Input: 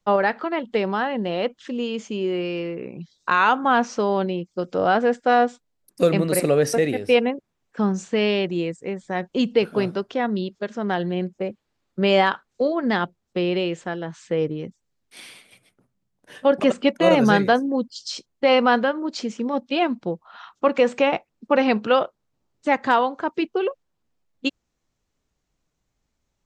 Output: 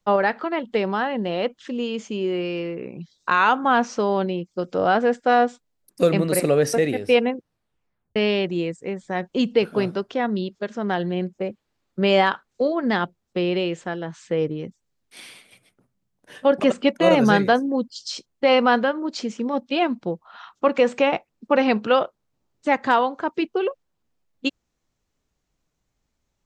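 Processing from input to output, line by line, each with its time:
7.29 s: tape stop 0.87 s

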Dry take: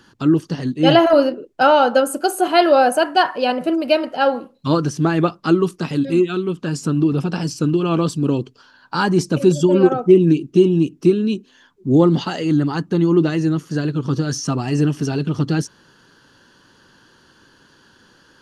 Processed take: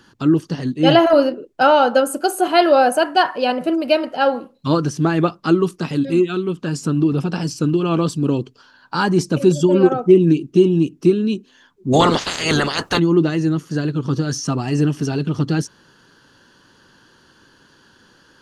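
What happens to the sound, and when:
11.92–12.98 s: spectral peaks clipped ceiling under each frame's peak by 30 dB

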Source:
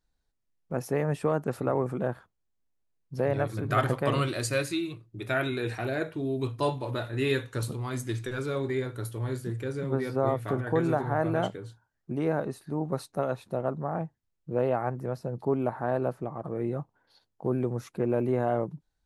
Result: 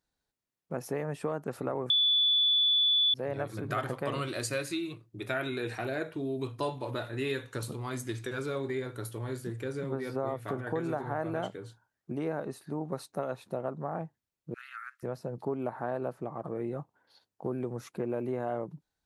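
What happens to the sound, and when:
1.90–3.14 s: bleep 3.46 kHz -11 dBFS
14.54–15.03 s: Chebyshev high-pass 1.3 kHz, order 6
whole clip: compression 2.5:1, threshold -30 dBFS; high-pass 160 Hz 6 dB/octave

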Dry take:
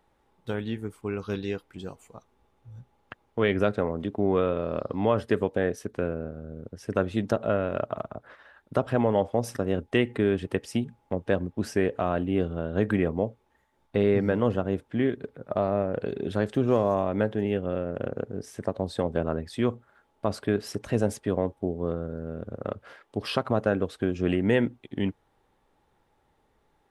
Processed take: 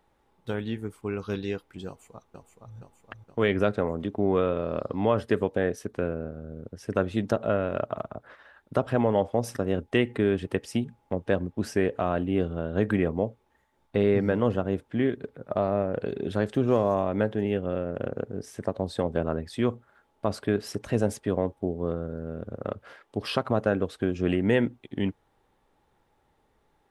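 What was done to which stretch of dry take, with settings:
1.87–2.76 s: echo throw 470 ms, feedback 60%, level -5 dB

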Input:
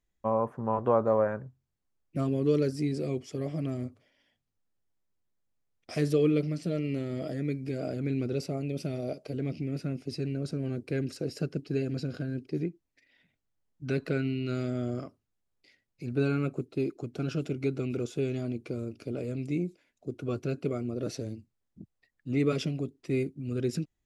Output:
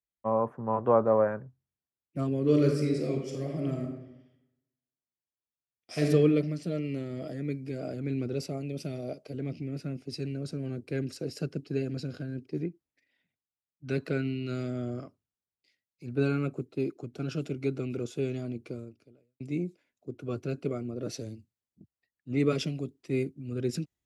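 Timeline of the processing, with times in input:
2.39–6.06 s: reverb throw, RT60 1.2 s, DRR 1 dB
18.70–19.40 s: fade out quadratic
whole clip: high-pass 60 Hz; three bands expanded up and down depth 40%; trim -1 dB

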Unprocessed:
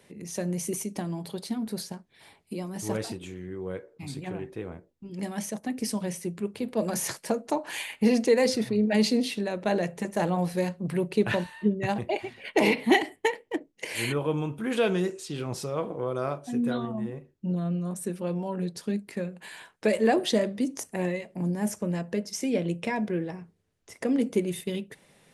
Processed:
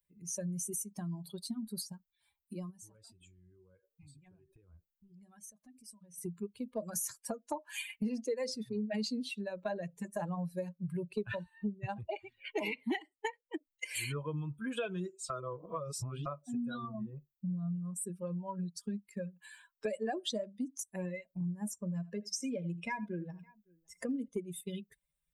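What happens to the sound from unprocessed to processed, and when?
2.70–6.18 s: compression 5:1, threshold -42 dBFS
15.30–16.26 s: reverse
21.80–24.28 s: multi-tap echo 81/561 ms -11/-19 dB
whole clip: expander on every frequency bin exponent 2; treble shelf 5.4 kHz +4.5 dB; compression 4:1, threshold -46 dBFS; trim +9 dB

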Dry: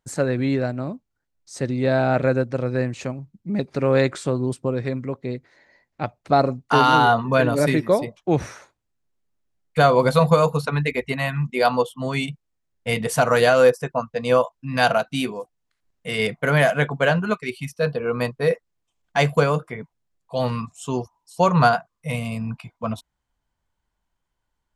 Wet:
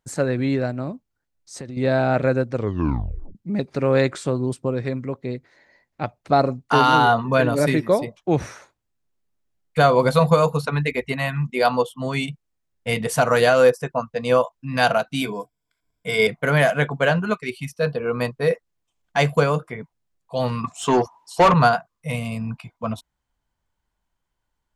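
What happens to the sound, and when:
0.91–1.77 s: compression, threshold -30 dBFS
2.53 s: tape stop 0.82 s
15.21–16.27 s: rippled EQ curve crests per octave 1.7, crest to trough 13 dB
20.64–21.54 s: overdrive pedal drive 24 dB, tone 1.8 kHz, clips at -5.5 dBFS

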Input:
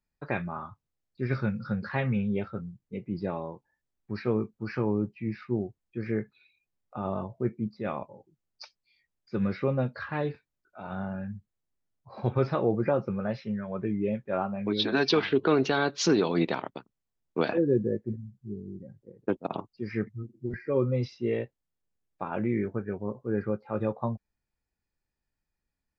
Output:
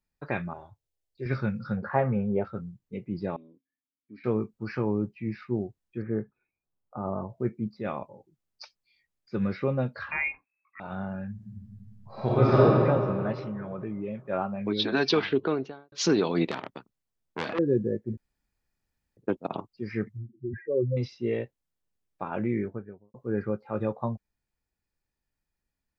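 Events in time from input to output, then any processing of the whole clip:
0.53–1.26 s: static phaser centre 510 Hz, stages 4
1.77–2.45 s: FFT filter 260 Hz 0 dB, 690 Hz +10 dB, 1.4 kHz +3 dB, 3.8 kHz -19 dB
3.36–4.24 s: vowel filter i
6.02–7.29 s: low-pass 1.4 kHz 24 dB/octave
10.11–10.80 s: frequency inversion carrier 2.6 kHz
11.34–12.62 s: reverb throw, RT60 2.6 s, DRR -8 dB
13.32–14.27 s: compression 2.5:1, threshold -32 dBFS
15.23–15.92 s: studio fade out
16.51–17.59 s: transformer saturation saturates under 2 kHz
18.17–19.17 s: room tone
20.17–20.97 s: spectral contrast enhancement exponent 2.5
22.49–23.14 s: studio fade out

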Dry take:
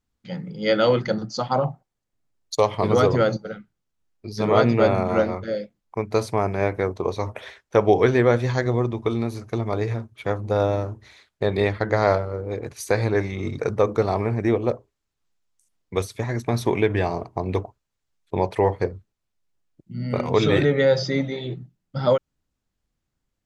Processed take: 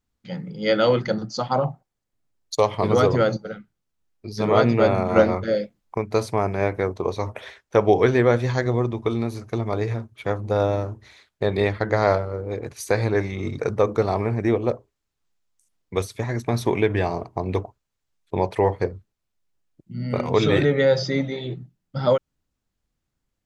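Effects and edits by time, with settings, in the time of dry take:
5.16–5.98 s: gain +4.5 dB

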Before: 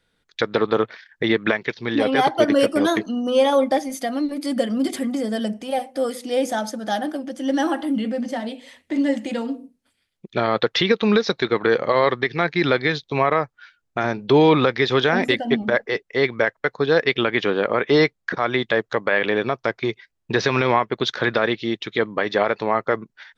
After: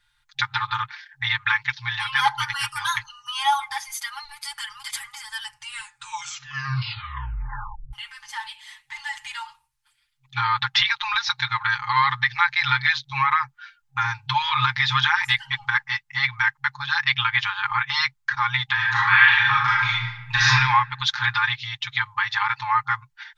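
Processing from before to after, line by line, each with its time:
5.48 s: tape stop 2.45 s
18.74–20.48 s: reverb throw, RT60 0.97 s, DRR -6.5 dB
whole clip: FFT band-reject 130–800 Hz; comb 5.7 ms, depth 93%

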